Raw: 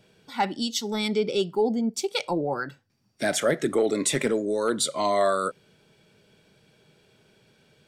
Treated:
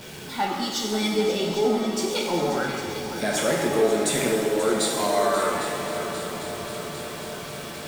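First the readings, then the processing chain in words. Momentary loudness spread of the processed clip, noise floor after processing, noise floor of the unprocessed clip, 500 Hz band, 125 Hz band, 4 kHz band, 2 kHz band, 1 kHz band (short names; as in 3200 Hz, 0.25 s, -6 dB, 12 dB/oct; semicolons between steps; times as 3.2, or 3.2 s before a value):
11 LU, -36 dBFS, -64 dBFS, +2.5 dB, +3.5 dB, +3.0 dB, +3.5 dB, +2.5 dB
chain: zero-crossing step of -33 dBFS; multi-head echo 0.267 s, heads second and third, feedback 69%, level -12 dB; shimmer reverb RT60 1.5 s, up +7 st, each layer -8 dB, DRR -0.5 dB; gain -3.5 dB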